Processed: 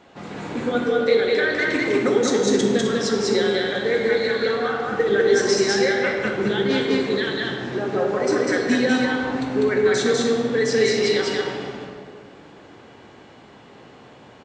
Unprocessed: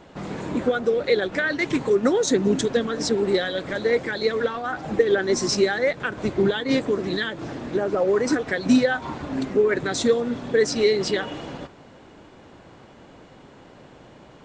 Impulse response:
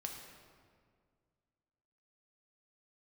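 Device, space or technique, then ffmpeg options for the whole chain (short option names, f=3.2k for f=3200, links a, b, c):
stadium PA: -filter_complex "[0:a]highpass=f=120:p=1,equalizer=f=2.7k:t=o:w=2.1:g=3.5,aecho=1:1:198.3|259.5:0.891|0.316[a];[1:a]atrim=start_sample=2205[b];[a][b]afir=irnorm=-1:irlink=0"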